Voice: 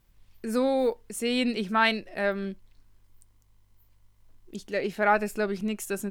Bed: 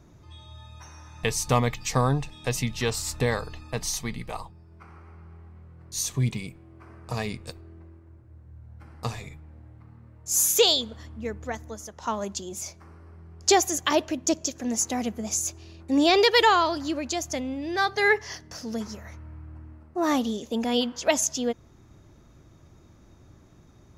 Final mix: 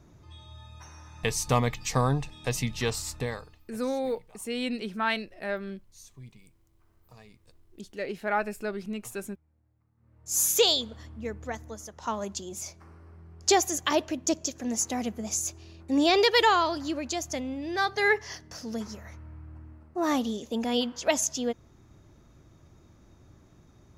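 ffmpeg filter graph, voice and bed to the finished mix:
ffmpeg -i stem1.wav -i stem2.wav -filter_complex "[0:a]adelay=3250,volume=-5dB[link_01];[1:a]volume=18dB,afade=type=out:start_time=2.88:duration=0.73:silence=0.0944061,afade=type=in:start_time=9.96:duration=0.47:silence=0.1[link_02];[link_01][link_02]amix=inputs=2:normalize=0" out.wav

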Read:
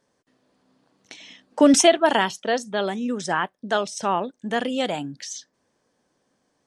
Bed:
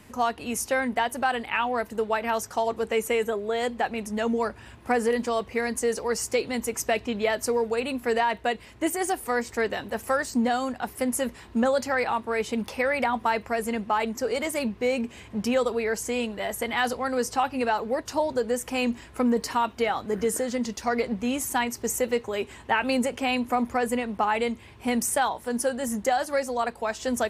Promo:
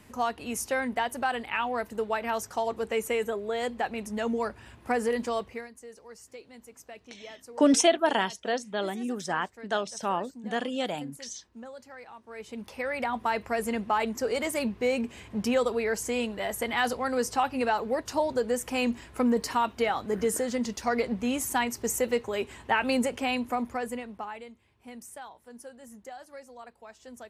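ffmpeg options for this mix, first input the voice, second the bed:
ffmpeg -i stem1.wav -i stem2.wav -filter_complex "[0:a]adelay=6000,volume=-6dB[link_01];[1:a]volume=16dB,afade=type=out:start_time=5.37:duration=0.32:silence=0.133352,afade=type=in:start_time=12.21:duration=1.39:silence=0.105925,afade=type=out:start_time=23.04:duration=1.42:silence=0.125893[link_02];[link_01][link_02]amix=inputs=2:normalize=0" out.wav

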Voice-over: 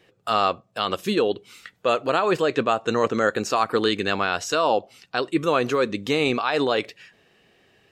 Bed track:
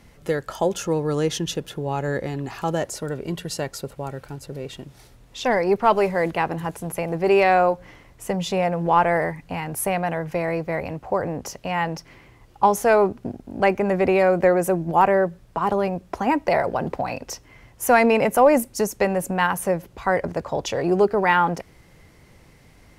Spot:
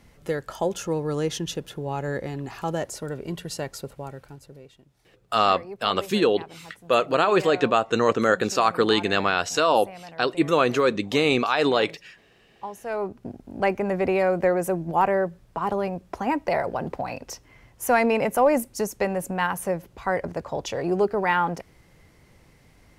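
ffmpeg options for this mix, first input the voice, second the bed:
ffmpeg -i stem1.wav -i stem2.wav -filter_complex "[0:a]adelay=5050,volume=1dB[link_01];[1:a]volume=11dB,afade=type=out:start_time=3.86:duration=0.89:silence=0.177828,afade=type=in:start_time=12.79:duration=0.64:silence=0.188365[link_02];[link_01][link_02]amix=inputs=2:normalize=0" out.wav

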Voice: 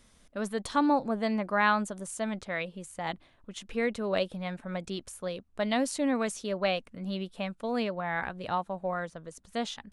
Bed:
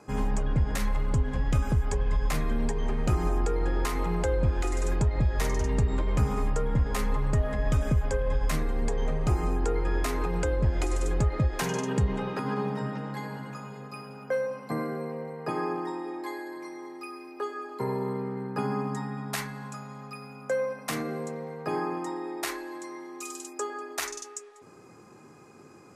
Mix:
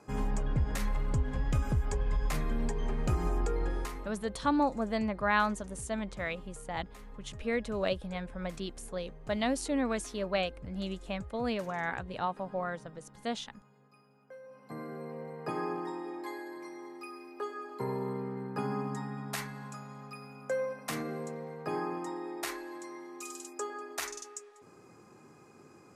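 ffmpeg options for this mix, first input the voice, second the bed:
ffmpeg -i stem1.wav -i stem2.wav -filter_complex "[0:a]adelay=3700,volume=-2.5dB[link_01];[1:a]volume=13dB,afade=type=out:start_time=3.61:duration=0.52:silence=0.133352,afade=type=in:start_time=14.42:duration=0.94:silence=0.133352[link_02];[link_01][link_02]amix=inputs=2:normalize=0" out.wav

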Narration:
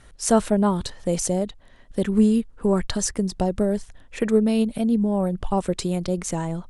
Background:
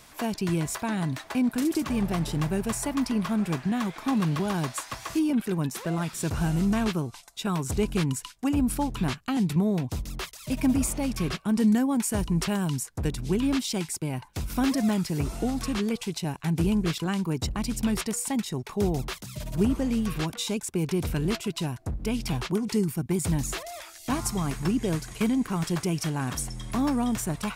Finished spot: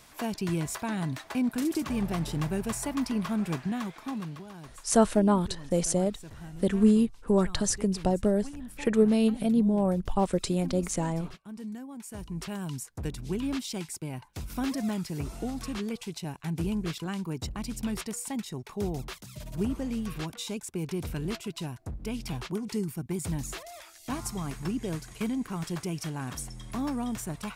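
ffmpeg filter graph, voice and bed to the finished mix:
ffmpeg -i stem1.wav -i stem2.wav -filter_complex "[0:a]adelay=4650,volume=-3dB[link_01];[1:a]volume=8.5dB,afade=type=out:start_time=3.55:duration=0.9:silence=0.188365,afade=type=in:start_time=11.96:duration=0.94:silence=0.266073[link_02];[link_01][link_02]amix=inputs=2:normalize=0" out.wav

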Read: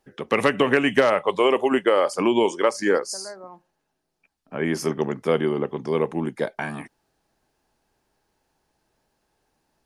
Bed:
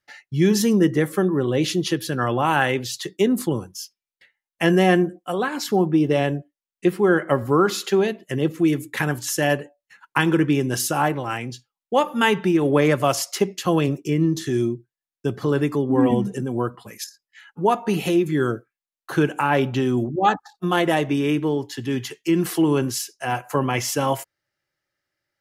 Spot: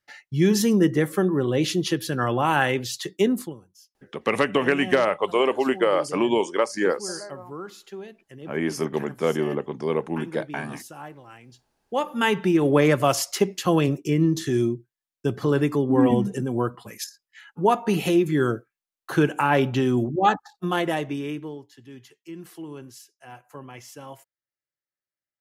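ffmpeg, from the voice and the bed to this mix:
ffmpeg -i stem1.wav -i stem2.wav -filter_complex "[0:a]adelay=3950,volume=-2dB[link_01];[1:a]volume=17dB,afade=type=out:start_time=3.27:duration=0.28:silence=0.133352,afade=type=in:start_time=11.46:duration=1.15:silence=0.11885,afade=type=out:start_time=20.18:duration=1.51:silence=0.11885[link_02];[link_01][link_02]amix=inputs=2:normalize=0" out.wav

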